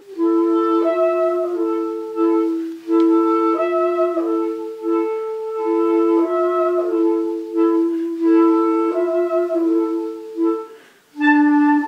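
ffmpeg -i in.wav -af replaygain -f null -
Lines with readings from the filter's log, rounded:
track_gain = -1.4 dB
track_peak = 0.465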